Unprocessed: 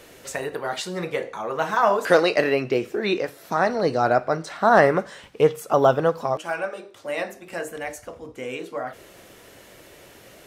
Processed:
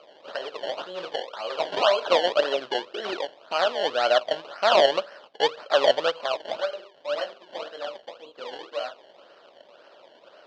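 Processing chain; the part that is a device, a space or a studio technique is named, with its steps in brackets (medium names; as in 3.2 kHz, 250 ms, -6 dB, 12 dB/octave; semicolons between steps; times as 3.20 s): circuit-bent sampling toy (decimation with a swept rate 24×, swing 100% 1.9 Hz; cabinet simulation 480–4900 Hz, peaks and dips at 590 Hz +9 dB, 1.4 kHz +5 dB, 2.1 kHz -7 dB, 3 kHz +9 dB, 4.3 kHz +4 dB); trim -5 dB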